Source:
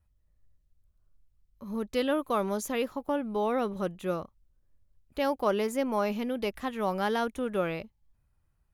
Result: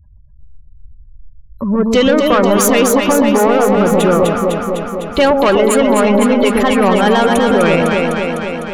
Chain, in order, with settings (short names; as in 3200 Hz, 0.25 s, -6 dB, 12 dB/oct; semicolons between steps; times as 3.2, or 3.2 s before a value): spectral gate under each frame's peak -25 dB strong; high shelf 2600 Hz +8.5 dB; in parallel at +1 dB: compressor, threshold -39 dBFS, peak gain reduction 17 dB; on the sum: soft clip -23.5 dBFS, distortion -12 dB; on a send: echo with dull and thin repeats by turns 0.126 s, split 870 Hz, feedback 83%, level -2.5 dB; on the sum: maximiser +20 dB; gain -2 dB